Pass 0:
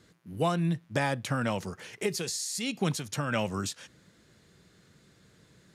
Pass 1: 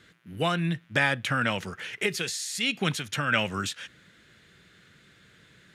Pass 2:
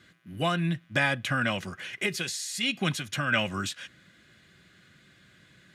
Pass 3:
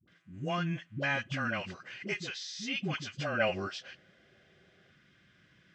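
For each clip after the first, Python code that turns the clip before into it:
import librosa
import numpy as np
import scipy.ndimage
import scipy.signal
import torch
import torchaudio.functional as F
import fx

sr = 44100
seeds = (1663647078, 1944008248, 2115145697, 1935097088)

y1 = fx.band_shelf(x, sr, hz=2200.0, db=9.5, octaves=1.7)
y2 = fx.notch_comb(y1, sr, f0_hz=450.0)
y3 = fx.freq_compress(y2, sr, knee_hz=2600.0, ratio=1.5)
y3 = fx.spec_box(y3, sr, start_s=3.16, length_s=1.7, low_hz=360.0, high_hz=830.0, gain_db=9)
y3 = fx.dispersion(y3, sr, late='highs', ms=78.0, hz=430.0)
y3 = y3 * librosa.db_to_amplitude(-6.0)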